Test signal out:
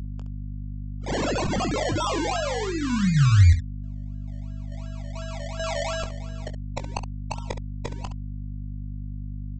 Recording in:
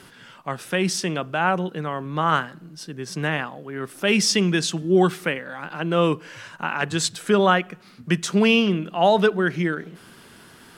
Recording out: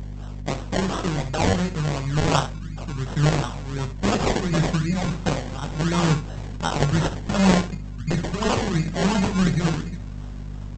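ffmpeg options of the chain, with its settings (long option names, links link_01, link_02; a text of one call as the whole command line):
ffmpeg -i in.wav -af "afftfilt=real='re*lt(hypot(re,im),0.891)':imag='im*lt(hypot(re,im),0.891)':win_size=1024:overlap=0.75,asubboost=boost=7:cutoff=140,aresample=16000,acrusher=samples=10:mix=1:aa=0.000001:lfo=1:lforange=6:lforate=2.8,aresample=44100,aeval=exprs='val(0)+0.0224*(sin(2*PI*50*n/s)+sin(2*PI*2*50*n/s)/2+sin(2*PI*3*50*n/s)/3+sin(2*PI*4*50*n/s)/4+sin(2*PI*5*50*n/s)/5)':channel_layout=same,aecho=1:1:21|68:0.299|0.266" out.wav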